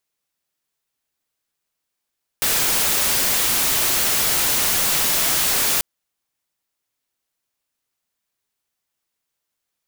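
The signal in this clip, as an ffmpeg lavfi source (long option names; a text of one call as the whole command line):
ffmpeg -f lavfi -i "anoisesrc=color=white:amplitude=0.194:duration=3.39:sample_rate=44100:seed=1" out.wav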